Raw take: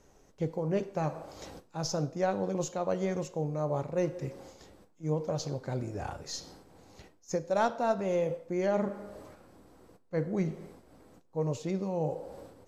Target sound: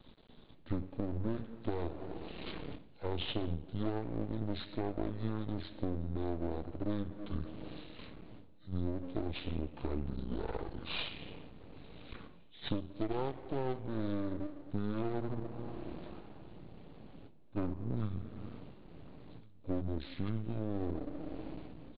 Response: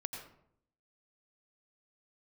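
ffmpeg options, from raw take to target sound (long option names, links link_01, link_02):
-filter_complex "[0:a]aresample=16000,aeval=exprs='max(val(0),0)':channel_layout=same,aresample=44100,acompressor=threshold=-38dB:ratio=5,asplit=2[link_01][link_02];[link_02]adelay=816.3,volume=-26dB,highshelf=frequency=4000:gain=-18.4[link_03];[link_01][link_03]amix=inputs=2:normalize=0,asetrate=25442,aresample=44100,volume=6.5dB"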